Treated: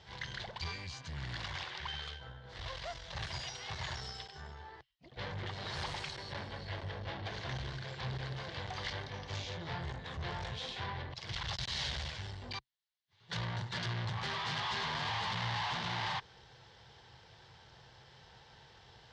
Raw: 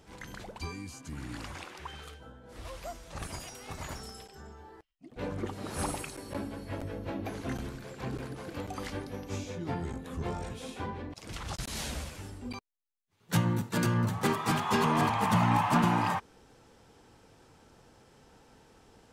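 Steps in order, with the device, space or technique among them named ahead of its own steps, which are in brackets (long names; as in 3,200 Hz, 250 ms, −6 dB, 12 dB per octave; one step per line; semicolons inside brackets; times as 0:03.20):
scooped metal amplifier (tube saturation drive 41 dB, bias 0.7; loudspeaker in its box 77–4,200 Hz, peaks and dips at 130 Hz +7 dB, 350 Hz +8 dB, 1,300 Hz −8 dB, 2,500 Hz −9 dB; guitar amp tone stack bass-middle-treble 10-0-10)
level +17 dB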